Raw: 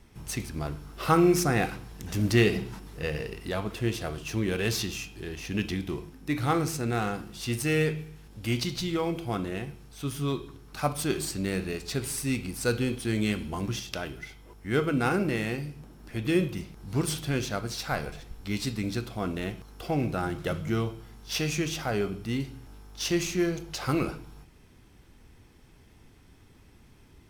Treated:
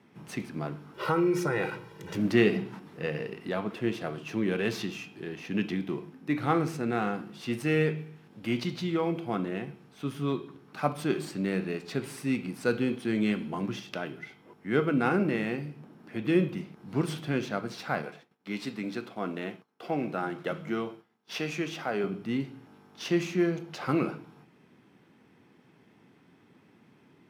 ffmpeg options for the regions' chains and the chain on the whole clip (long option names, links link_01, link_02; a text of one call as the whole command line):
ffmpeg -i in.wav -filter_complex "[0:a]asettb=1/sr,asplit=3[link_01][link_02][link_03];[link_01]atrim=end=0.944[link_04];[link_02]atrim=start=0.94:end=2.17,asetpts=PTS-STARTPTS,afade=type=in:duration=0.004:curve=qsin,afade=type=out:start_time=1.226:duration=0.004:curve=qsin,aecho=1:1:2.1:0.98,atrim=end_sample=54243,acompressor=threshold=-23dB:ratio=4:attack=3.2:release=140:knee=1:detection=peak[link_05];[link_03]atrim=start=2.166[link_06];[link_04][link_05]acrossfade=duration=0.004:curve1=hsin:curve2=qsin[link_07];[link_07][link_06]acrossfade=duration=0.004:curve1=qsin:curve2=hsin,asettb=1/sr,asplit=3[link_08][link_09][link_10];[link_08]atrim=end=18.024[link_11];[link_09]atrim=start=18.02:end=22.04,asetpts=PTS-STARTPTS,afade=type=in:duration=0.004:curve=qsin,afade=type=out:start_time=4.016:duration=0.004:curve=qsin,highpass=frequency=300:poles=1,agate=range=-33dB:threshold=-45dB:ratio=3:release=100:detection=peak[link_12];[link_10]atrim=start=22.036[link_13];[link_11][link_12]acrossfade=duration=0.004:curve1=hsin:curve2=qsin[link_14];[link_14][link_13]acrossfade=duration=0.004:curve1=qsin:curve2=hsin,highpass=frequency=160:width=0.5412,highpass=frequency=160:width=1.3066,bass=frequency=250:gain=3,treble=frequency=4000:gain=-14" out.wav